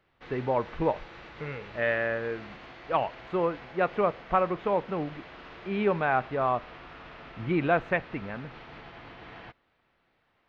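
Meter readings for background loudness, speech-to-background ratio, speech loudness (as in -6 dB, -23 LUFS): -46.0 LUFS, 16.5 dB, -29.5 LUFS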